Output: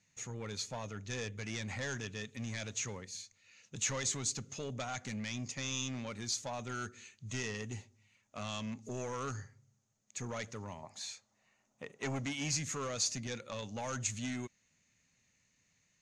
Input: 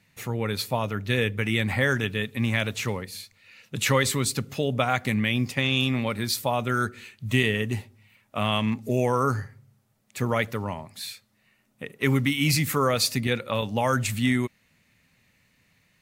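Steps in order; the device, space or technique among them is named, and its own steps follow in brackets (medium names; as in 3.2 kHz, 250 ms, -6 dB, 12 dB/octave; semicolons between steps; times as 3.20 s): overdriven synthesiser ladder filter (saturation -21.5 dBFS, distortion -10 dB; four-pole ladder low-pass 6.9 kHz, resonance 80%); 10.82–12.49 s: peaking EQ 790 Hz +14.5 dB -> +7 dB 1.5 oct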